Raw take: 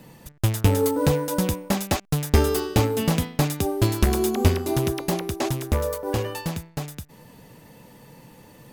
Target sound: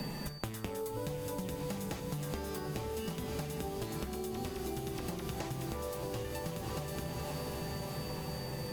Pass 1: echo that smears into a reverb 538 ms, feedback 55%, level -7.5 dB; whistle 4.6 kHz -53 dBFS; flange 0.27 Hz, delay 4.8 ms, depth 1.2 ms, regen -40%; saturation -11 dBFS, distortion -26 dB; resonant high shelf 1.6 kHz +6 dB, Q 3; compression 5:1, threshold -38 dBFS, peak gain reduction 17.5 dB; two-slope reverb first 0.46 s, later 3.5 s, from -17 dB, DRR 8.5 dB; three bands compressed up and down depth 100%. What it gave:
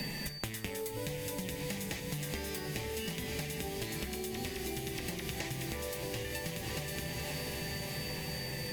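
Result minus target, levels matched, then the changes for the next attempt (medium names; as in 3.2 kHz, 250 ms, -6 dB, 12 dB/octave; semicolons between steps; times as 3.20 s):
saturation: distortion +18 dB; 2 kHz band +6.0 dB
change: saturation -1 dBFS, distortion -44 dB; remove: resonant high shelf 1.6 kHz +6 dB, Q 3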